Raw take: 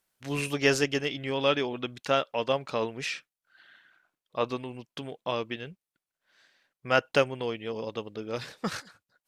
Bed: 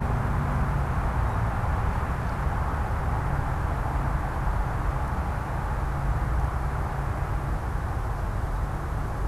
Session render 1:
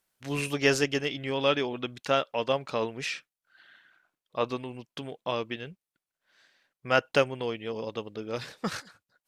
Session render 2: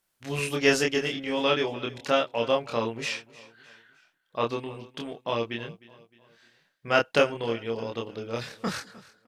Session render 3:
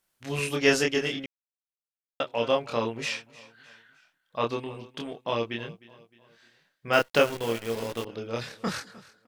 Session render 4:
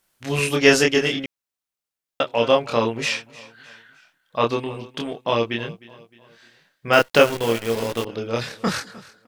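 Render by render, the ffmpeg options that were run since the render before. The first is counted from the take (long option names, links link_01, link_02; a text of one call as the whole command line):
ffmpeg -i in.wav -af anull out.wav
ffmpeg -i in.wav -filter_complex "[0:a]asplit=2[link_01][link_02];[link_02]adelay=26,volume=-2dB[link_03];[link_01][link_03]amix=inputs=2:normalize=0,aecho=1:1:307|614|921:0.1|0.045|0.0202" out.wav
ffmpeg -i in.wav -filter_complex "[0:a]asettb=1/sr,asplit=3[link_01][link_02][link_03];[link_01]atrim=end=3.024[link_04];[link_02]atrim=start=3.02:end=4.44,asetpts=PTS-STARTPTS,afade=type=in:duration=0.004:curve=qsin,afade=type=out:start_time=1.416:duration=0.004:curve=qsin,equalizer=frequency=380:width=5.3:gain=-11[link_05];[link_03]atrim=start=4.436[link_06];[link_04][link_05]acrossfade=duration=0.004:curve1=hsin:curve2=qsin[link_07];[link_07][link_06]acrossfade=duration=0.004:curve1=qsin:curve2=hsin,asettb=1/sr,asplit=3[link_08][link_09][link_10];[link_08]atrim=end=6.934[link_11];[link_09]atrim=start=6.93:end=8.05,asetpts=PTS-STARTPTS,afade=type=in:duration=0.004:curve=qsin,afade=type=out:start_time=1.116:duration=0.004:curve=qsin,acrusher=bits=7:dc=4:mix=0:aa=0.000001[link_12];[link_10]atrim=start=8.046[link_13];[link_11][link_12]acrossfade=duration=0.004:curve1=hsin:curve2=qsin[link_14];[link_14][link_13]acrossfade=duration=0.004:curve1=qsin:curve2=hsin,asplit=3[link_15][link_16][link_17];[link_15]atrim=end=1.26,asetpts=PTS-STARTPTS,afade=type=out:start_time=1.256:duration=0.004:curve=hsin[link_18];[link_16]atrim=start=1.26:end=2.2,asetpts=PTS-STARTPTS,volume=0[link_19];[link_17]atrim=start=2.2,asetpts=PTS-STARTPTS,afade=type=in:duration=0.004:curve=hsin[link_20];[link_18][link_19][link_20]concat=n=3:v=0:a=1" out.wav
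ffmpeg -i in.wav -af "volume=7.5dB,alimiter=limit=-1dB:level=0:latency=1" out.wav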